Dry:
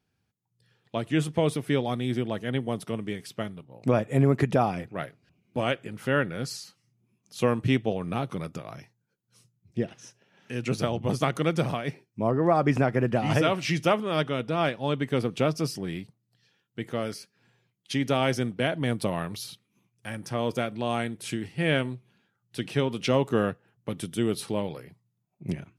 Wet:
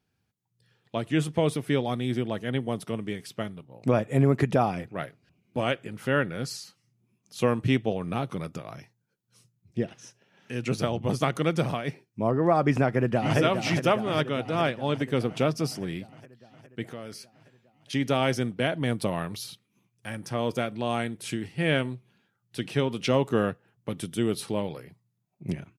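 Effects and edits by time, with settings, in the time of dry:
0:12.84–0:13.38: delay throw 410 ms, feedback 70%, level −7 dB
0:16.84–0:17.93: downward compressor 2.5 to 1, threshold −38 dBFS

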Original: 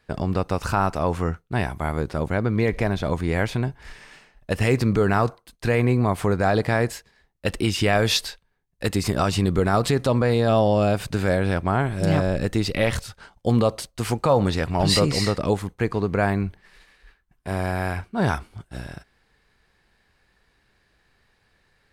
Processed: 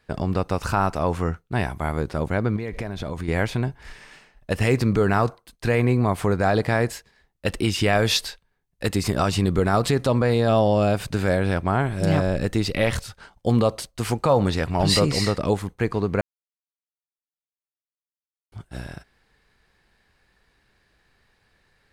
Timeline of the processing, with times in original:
0:02.56–0:03.28: downward compressor 10 to 1, threshold −24 dBFS
0:16.21–0:18.52: silence

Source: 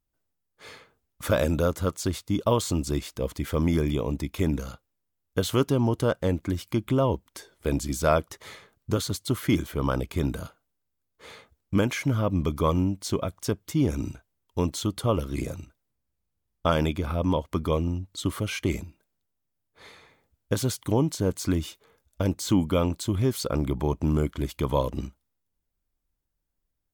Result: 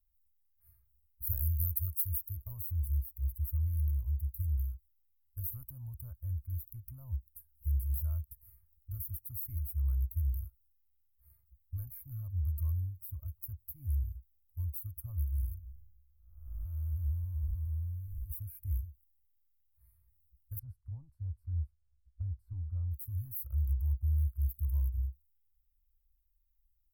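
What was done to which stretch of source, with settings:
0:01.27–0:02.37: high-shelf EQ 2,700 Hz +11 dB
0:15.58–0:18.30: spectrum smeared in time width 485 ms
0:20.59–0:22.91: head-to-tape spacing loss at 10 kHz 32 dB
whole clip: inverse Chebyshev band-stop filter 170–7,100 Hz, stop band 50 dB; parametric band 680 Hz +3.5 dB 2.2 octaves; level +7 dB

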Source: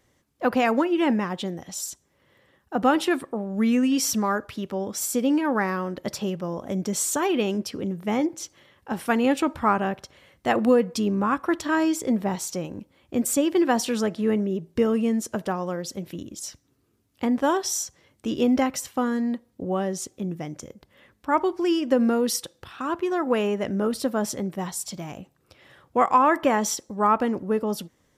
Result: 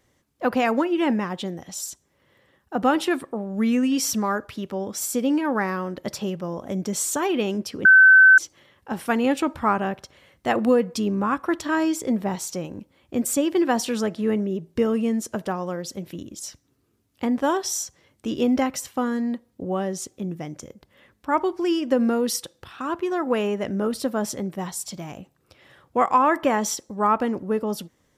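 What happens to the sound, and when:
0:07.85–0:08.38: beep over 1,530 Hz −8 dBFS

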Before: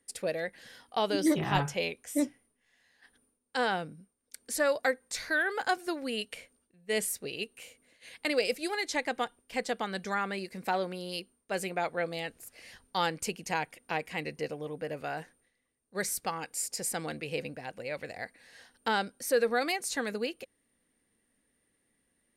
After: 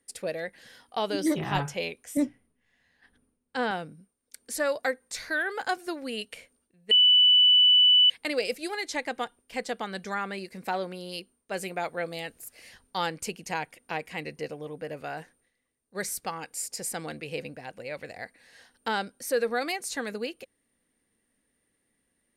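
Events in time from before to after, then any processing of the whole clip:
0:02.17–0:03.71: bass and treble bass +9 dB, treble −7 dB
0:06.91–0:08.10: beep over 2,980 Hz −15 dBFS
0:11.63–0:12.69: high-shelf EQ 8,300 Hz +7.5 dB

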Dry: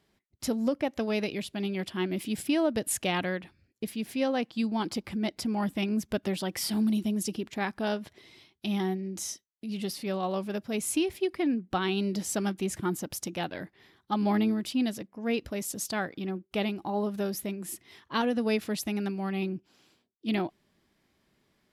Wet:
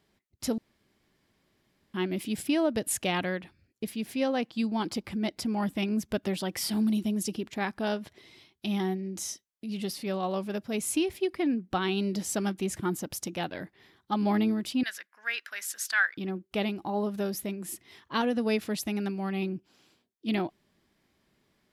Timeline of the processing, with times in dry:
0:00.58–0:01.94: fill with room tone
0:14.83–0:16.17: high-pass with resonance 1,600 Hz, resonance Q 5.2

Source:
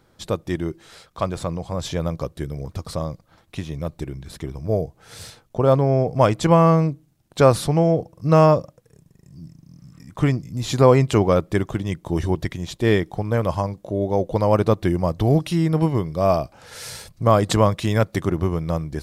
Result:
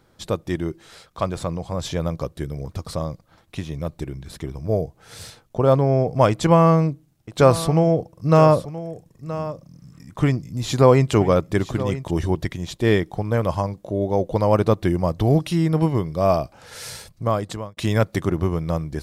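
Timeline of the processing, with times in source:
0:06.30–0:12.11: single-tap delay 974 ms −14 dB
0:16.90–0:17.77: fade out

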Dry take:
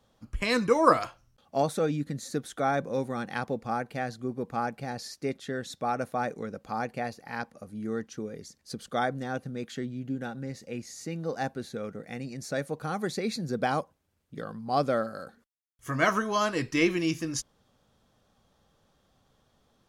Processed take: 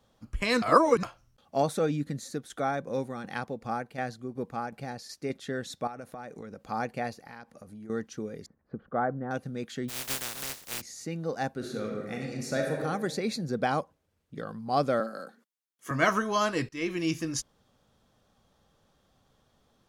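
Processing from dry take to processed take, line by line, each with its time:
0:00.62–0:01.03: reverse
0:02.13–0:05.30: shaped tremolo saw down 2.7 Hz, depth 55%
0:05.87–0:06.68: downward compressor, threshold −38 dBFS
0:07.25–0:07.90: downward compressor 4 to 1, threshold −43 dBFS
0:08.46–0:09.31: low-pass filter 1,500 Hz 24 dB per octave
0:09.88–0:10.80: compressing power law on the bin magnitudes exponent 0.13
0:11.55–0:12.78: thrown reverb, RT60 1.4 s, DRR 0 dB
0:13.43–0:14.48: high-shelf EQ 8,600 Hz −5.5 dB
0:15.00–0:15.91: Butterworth high-pass 180 Hz
0:16.69–0:17.12: fade in, from −20.5 dB

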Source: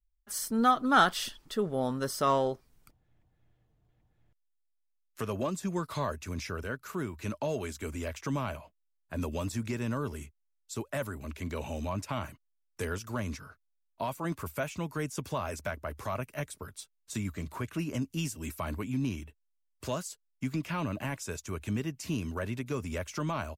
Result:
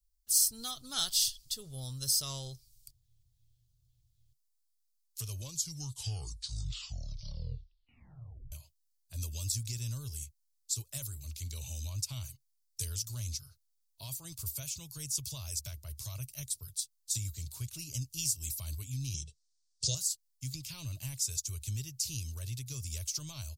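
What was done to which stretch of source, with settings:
0:05.27: tape stop 3.25 s
0:19.14–0:19.95: drawn EQ curve 100 Hz 0 dB, 170 Hz +14 dB, 250 Hz −3 dB, 480 Hz +14 dB, 720 Hz +1 dB, 1,300 Hz −15 dB, 3,600 Hz +7 dB, 5,600 Hz +10 dB, 9,000 Hz +2 dB, 13,000 Hz −28 dB
whole clip: drawn EQ curve 130 Hz 0 dB, 190 Hz −22 dB, 1,700 Hz −23 dB, 4,500 Hz +10 dB

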